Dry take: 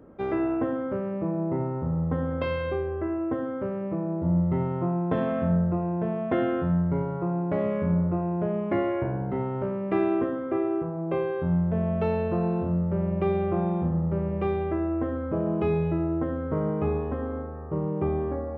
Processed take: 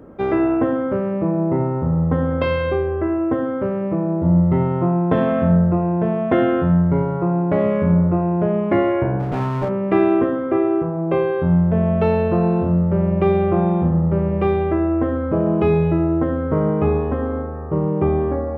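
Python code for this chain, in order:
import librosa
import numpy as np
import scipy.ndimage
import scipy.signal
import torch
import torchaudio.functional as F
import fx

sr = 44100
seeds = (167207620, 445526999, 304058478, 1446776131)

y = fx.lower_of_two(x, sr, delay_ms=6.8, at=(9.19, 9.68), fade=0.02)
y = y * librosa.db_to_amplitude(8.5)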